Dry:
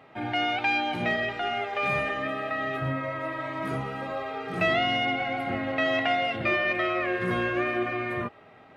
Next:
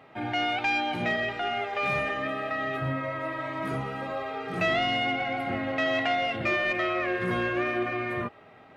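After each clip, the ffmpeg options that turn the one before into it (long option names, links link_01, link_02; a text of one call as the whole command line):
ffmpeg -i in.wav -af "asoftclip=type=tanh:threshold=-17dB" out.wav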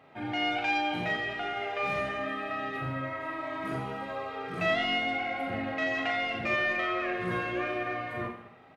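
ffmpeg -i in.wav -af "aecho=1:1:40|86|138.9|199.7|269.7:0.631|0.398|0.251|0.158|0.1,volume=-5dB" out.wav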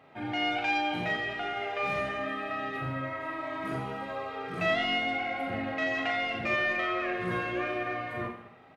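ffmpeg -i in.wav -af anull out.wav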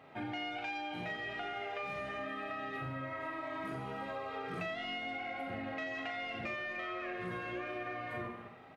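ffmpeg -i in.wav -af "acompressor=threshold=-37dB:ratio=10" out.wav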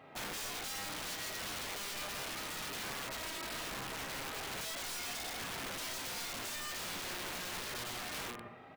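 ffmpeg -i in.wav -af "aeval=exprs='(mod(75*val(0)+1,2)-1)/75':channel_layout=same,volume=1dB" out.wav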